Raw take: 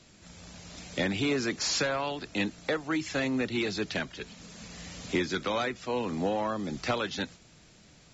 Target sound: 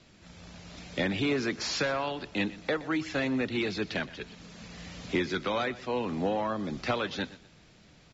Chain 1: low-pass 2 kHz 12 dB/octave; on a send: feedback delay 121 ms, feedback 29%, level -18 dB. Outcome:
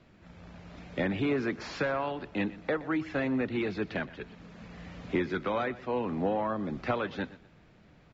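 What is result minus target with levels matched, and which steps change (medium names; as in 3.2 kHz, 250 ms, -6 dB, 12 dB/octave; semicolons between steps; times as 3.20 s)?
4 kHz band -8.5 dB
change: low-pass 4.8 kHz 12 dB/octave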